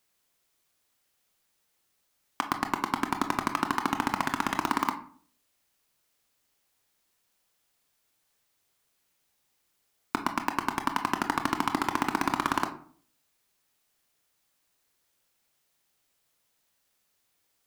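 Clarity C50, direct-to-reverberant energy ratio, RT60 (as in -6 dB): 11.5 dB, 6.5 dB, 0.50 s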